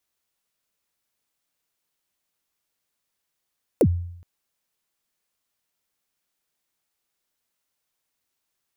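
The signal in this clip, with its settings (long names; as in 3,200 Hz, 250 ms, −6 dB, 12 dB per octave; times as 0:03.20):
synth kick length 0.42 s, from 580 Hz, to 87 Hz, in 62 ms, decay 0.73 s, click on, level −11 dB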